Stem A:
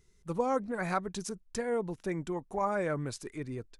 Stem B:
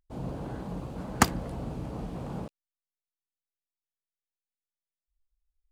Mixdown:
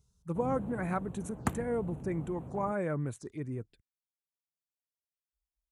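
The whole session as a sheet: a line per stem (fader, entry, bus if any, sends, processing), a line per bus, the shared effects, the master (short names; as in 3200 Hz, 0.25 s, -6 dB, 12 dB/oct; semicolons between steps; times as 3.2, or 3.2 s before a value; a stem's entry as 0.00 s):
-3.5 dB, 0.00 s, no send, dry
-6.0 dB, 0.25 s, no send, auto duck -6 dB, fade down 1.15 s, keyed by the first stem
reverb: off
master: envelope phaser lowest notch 310 Hz, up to 5000 Hz, full sweep at -37.5 dBFS; HPF 75 Hz 12 dB/oct; low shelf 240 Hz +9 dB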